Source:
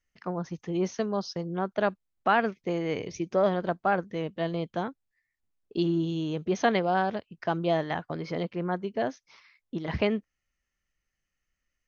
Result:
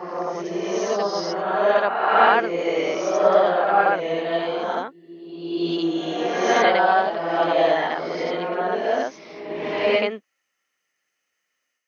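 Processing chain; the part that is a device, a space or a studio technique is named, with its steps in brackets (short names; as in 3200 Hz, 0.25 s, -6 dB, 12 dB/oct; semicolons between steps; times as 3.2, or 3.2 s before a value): ghost voice (reverse; reverb RT60 1.5 s, pre-delay 55 ms, DRR -5.5 dB; reverse; HPF 460 Hz 12 dB/oct); gain +4 dB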